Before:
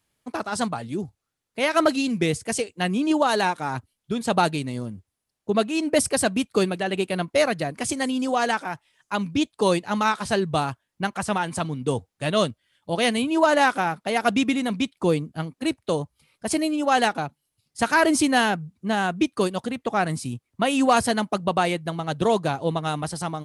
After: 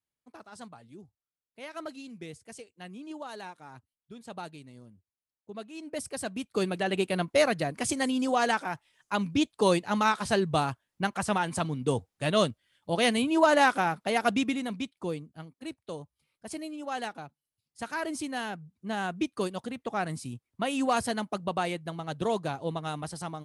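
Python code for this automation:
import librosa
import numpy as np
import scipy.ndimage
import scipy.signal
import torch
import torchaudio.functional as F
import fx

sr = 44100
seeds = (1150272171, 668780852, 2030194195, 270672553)

y = fx.gain(x, sr, db=fx.line((5.54, -20.0), (6.43, -11.0), (6.8, -3.0), (14.1, -3.0), (15.34, -14.5), (18.38, -14.5), (19.04, -8.0)))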